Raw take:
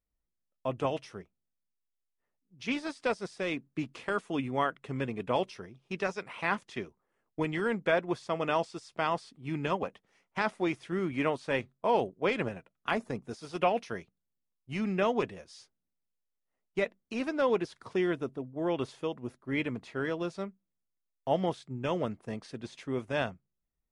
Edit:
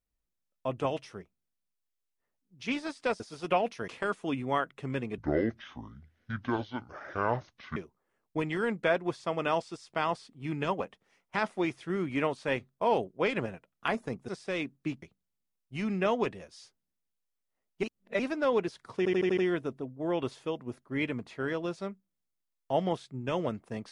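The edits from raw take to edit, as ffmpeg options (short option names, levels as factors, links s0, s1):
-filter_complex "[0:a]asplit=14[s0][s1][s2][s3][s4][s5][s6][s7][s8][s9][s10][s11][s12][s13];[s0]atrim=end=3.202[s14];[s1]atrim=start=13.308:end=13.992[s15];[s2]atrim=start=3.938:end=5.244[s16];[s3]atrim=start=5.24:end=6.79,asetpts=PTS-STARTPTS,asetrate=26460,aresample=44100[s17];[s4]atrim=start=6.786:end=13.312[s18];[s5]atrim=start=3.198:end=3.942[s19];[s6]atrim=start=13.988:end=16.802[s20];[s7]atrim=start=16.798:end=17.162,asetpts=PTS-STARTPTS,areverse[s21];[s8]atrim=start=17.158:end=18.022[s22];[s9]atrim=start=17.938:end=18.022[s23];[s10]atrim=start=17.938:end=18.022[s24];[s11]atrim=start=17.938:end=18.022[s25];[s12]atrim=start=17.938:end=18.022[s26];[s13]atrim=start=17.938[s27];[s14][s15]acrossfade=d=0.004:c1=hsin:c2=hsin[s28];[s28][s16]acrossfade=d=0.004:c1=hsin:c2=hsin[s29];[s29][s17]acrossfade=d=0.004:c1=hsin:c2=hsin[s30];[s30][s18]acrossfade=d=0.004:c1=hsin:c2=hsin[s31];[s31][s19]acrossfade=d=0.004:c1=hsin:c2=hsin[s32];[s32][s20]acrossfade=d=0.004:c1=hsin:c2=hsin[s33];[s33][s21]acrossfade=d=0.004:c1=hsin:c2=hsin[s34];[s34][s22]acrossfade=d=0.004:c1=hsin:c2=hsin[s35];[s35][s23]acrossfade=d=0.004:c1=hsin:c2=hsin[s36];[s36][s24]acrossfade=d=0.004:c1=hsin:c2=hsin[s37];[s37][s25]acrossfade=d=0.004:c1=hsin:c2=hsin[s38];[s38][s26]acrossfade=d=0.004:c1=hsin:c2=hsin[s39];[s39][s27]acrossfade=d=0.004:c1=hsin:c2=hsin"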